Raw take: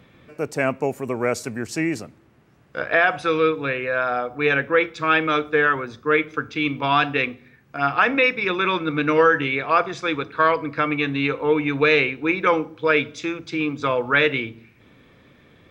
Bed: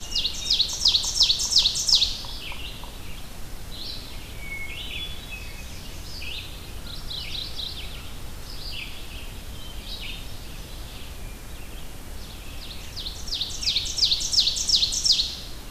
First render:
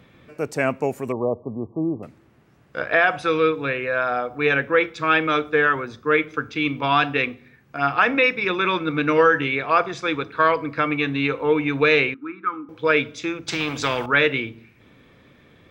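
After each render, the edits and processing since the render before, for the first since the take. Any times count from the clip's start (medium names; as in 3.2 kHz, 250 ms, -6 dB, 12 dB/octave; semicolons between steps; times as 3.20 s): 1.12–2.03 s: brick-wall FIR low-pass 1.2 kHz; 12.14–12.69 s: two resonant band-passes 590 Hz, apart 2.2 oct; 13.48–14.06 s: spectrum-flattening compressor 2:1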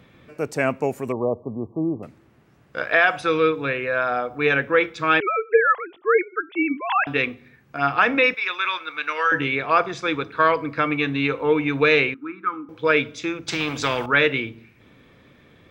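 2.78–3.21 s: tilt EQ +1.5 dB/octave; 5.20–7.07 s: formants replaced by sine waves; 8.34–9.32 s: high-pass 1.1 kHz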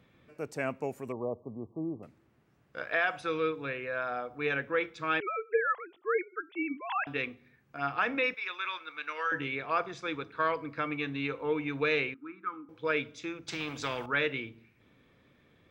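trim -11.5 dB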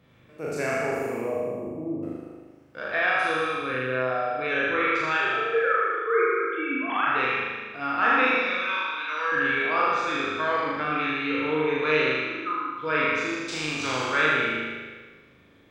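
spectral sustain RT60 1.24 s; on a send: flutter echo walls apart 6.7 m, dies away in 1.2 s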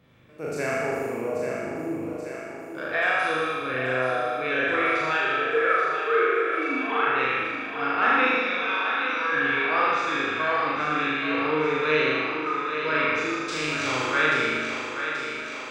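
thinning echo 832 ms, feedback 68%, high-pass 250 Hz, level -7.5 dB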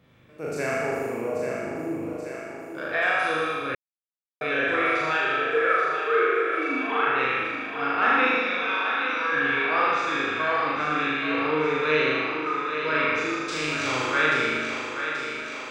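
3.75–4.41 s: mute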